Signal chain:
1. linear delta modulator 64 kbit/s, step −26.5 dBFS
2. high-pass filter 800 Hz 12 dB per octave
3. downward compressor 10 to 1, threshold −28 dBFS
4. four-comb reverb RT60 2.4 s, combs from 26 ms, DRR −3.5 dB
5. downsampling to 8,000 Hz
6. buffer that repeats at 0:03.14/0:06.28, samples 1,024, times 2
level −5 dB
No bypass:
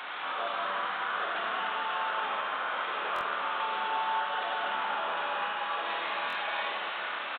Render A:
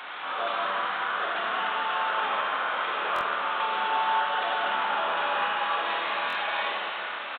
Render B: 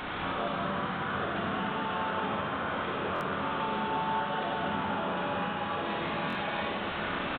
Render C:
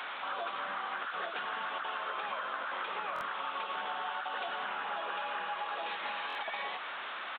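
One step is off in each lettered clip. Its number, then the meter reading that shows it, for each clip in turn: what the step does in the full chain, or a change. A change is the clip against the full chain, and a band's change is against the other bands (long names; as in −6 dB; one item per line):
3, average gain reduction 4.0 dB
2, 250 Hz band +18.5 dB
4, change in momentary loudness spread −1 LU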